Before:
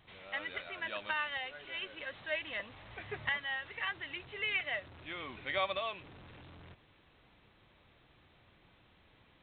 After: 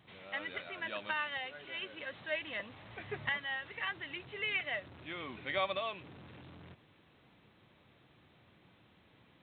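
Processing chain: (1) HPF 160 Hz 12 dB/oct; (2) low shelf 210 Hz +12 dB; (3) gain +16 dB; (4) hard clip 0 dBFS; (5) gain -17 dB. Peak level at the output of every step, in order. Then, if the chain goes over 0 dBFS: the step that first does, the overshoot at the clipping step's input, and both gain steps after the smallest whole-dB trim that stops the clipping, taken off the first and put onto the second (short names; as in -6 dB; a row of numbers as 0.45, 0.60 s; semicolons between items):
-19.5, -18.5, -2.5, -2.5, -19.5 dBFS; no overload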